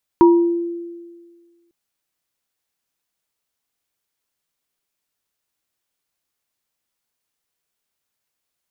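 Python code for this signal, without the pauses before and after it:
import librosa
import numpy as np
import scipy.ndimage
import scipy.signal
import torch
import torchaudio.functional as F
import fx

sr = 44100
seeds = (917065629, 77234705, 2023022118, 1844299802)

y = fx.additive_free(sr, length_s=1.5, hz=342.0, level_db=-6.0, upper_db=(-5.5,), decay_s=1.66, upper_decays_s=(0.45,), upper_hz=(953.0,))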